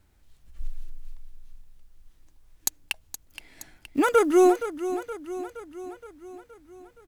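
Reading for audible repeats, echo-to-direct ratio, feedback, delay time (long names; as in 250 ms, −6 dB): 5, −10.0 dB, 58%, 470 ms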